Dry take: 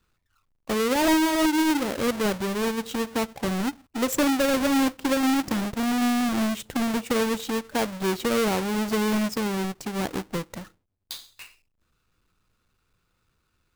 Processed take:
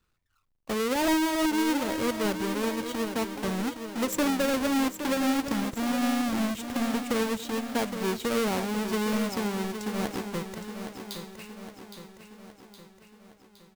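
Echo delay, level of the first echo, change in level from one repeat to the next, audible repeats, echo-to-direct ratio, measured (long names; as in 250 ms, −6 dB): 815 ms, −9.0 dB, −5.5 dB, 5, −7.5 dB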